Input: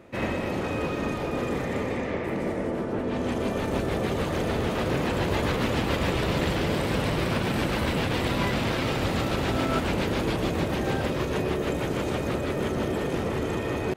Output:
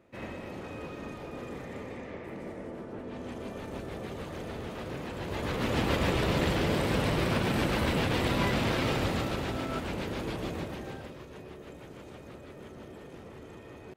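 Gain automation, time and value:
5.16 s -12 dB
5.81 s -2 dB
8.94 s -2 dB
9.62 s -8.5 dB
10.53 s -8.5 dB
11.24 s -19 dB

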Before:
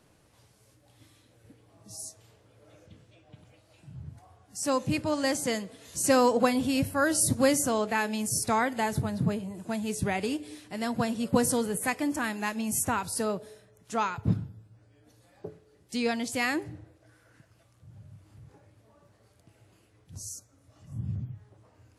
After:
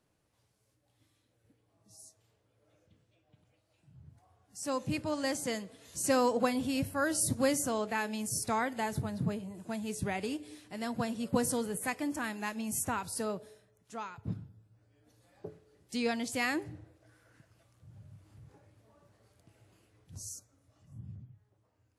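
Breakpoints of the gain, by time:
3.92 s -13.5 dB
4.89 s -5.5 dB
13.42 s -5.5 dB
14.04 s -13 dB
15.48 s -3.5 dB
20.33 s -3.5 dB
21.26 s -15 dB

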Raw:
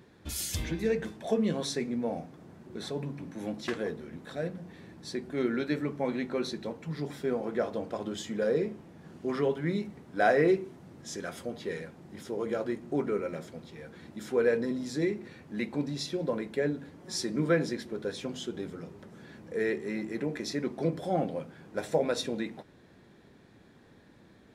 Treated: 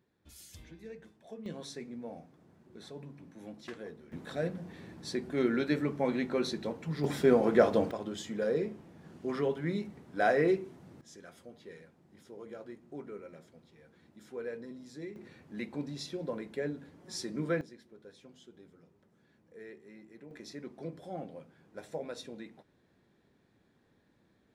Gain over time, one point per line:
-18.5 dB
from 1.46 s -11 dB
from 4.12 s +0.5 dB
from 7.04 s +7 dB
from 7.91 s -3 dB
from 11.01 s -14 dB
from 15.16 s -6 dB
from 17.61 s -19 dB
from 20.31 s -12 dB

